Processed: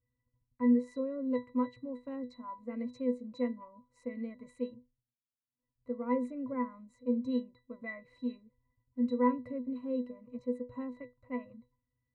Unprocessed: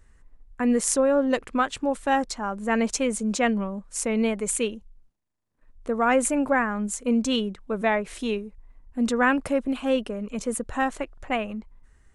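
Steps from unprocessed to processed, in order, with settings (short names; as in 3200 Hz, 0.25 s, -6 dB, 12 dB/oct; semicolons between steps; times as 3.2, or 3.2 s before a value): gate -47 dBFS, range -8 dB; octave resonator B, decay 0.21 s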